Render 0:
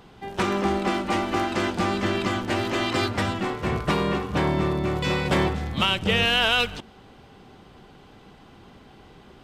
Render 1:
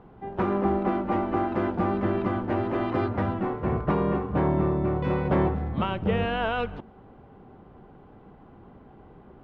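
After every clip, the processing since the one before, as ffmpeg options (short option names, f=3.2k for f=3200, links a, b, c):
-af "lowpass=1.1k"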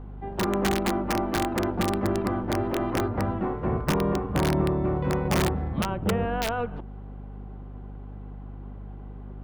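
-filter_complex "[0:a]acrossover=split=260|1700[a][b][c];[b]aeval=exprs='(mod(9.44*val(0)+1,2)-1)/9.44':c=same[d];[c]acompressor=threshold=-51dB:ratio=6[e];[a][d][e]amix=inputs=3:normalize=0,aeval=exprs='val(0)+0.0126*(sin(2*PI*50*n/s)+sin(2*PI*2*50*n/s)/2+sin(2*PI*3*50*n/s)/3+sin(2*PI*4*50*n/s)/4+sin(2*PI*5*50*n/s)/5)':c=same"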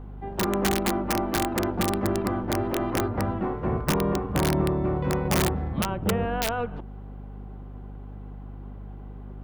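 -af "highshelf=f=6.6k:g=7.5"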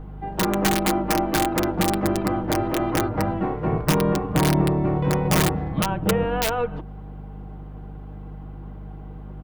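-af "aecho=1:1:6.4:0.5,volume=3dB"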